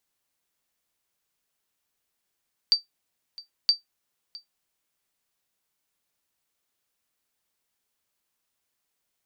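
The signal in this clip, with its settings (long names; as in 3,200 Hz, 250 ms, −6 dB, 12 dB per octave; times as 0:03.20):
ping with an echo 4,650 Hz, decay 0.14 s, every 0.97 s, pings 2, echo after 0.66 s, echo −21.5 dB −10.5 dBFS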